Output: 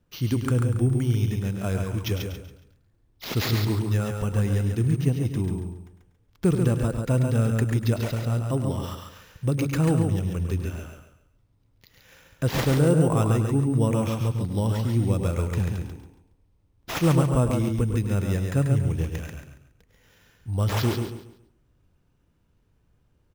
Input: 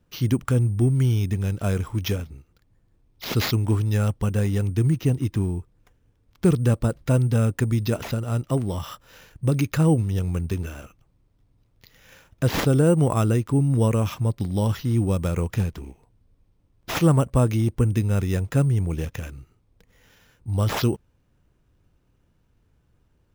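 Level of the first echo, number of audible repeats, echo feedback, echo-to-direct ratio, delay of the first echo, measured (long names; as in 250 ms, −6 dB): −10.5 dB, 6, repeats not evenly spaced, −3.5 dB, 103 ms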